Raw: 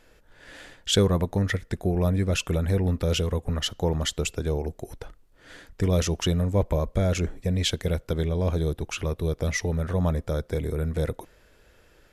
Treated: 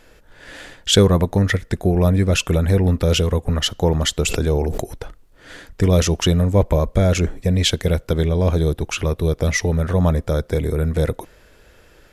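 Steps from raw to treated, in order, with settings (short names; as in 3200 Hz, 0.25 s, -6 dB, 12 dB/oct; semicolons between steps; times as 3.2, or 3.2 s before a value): 4.23–4.84 sustainer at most 30 dB/s; gain +7.5 dB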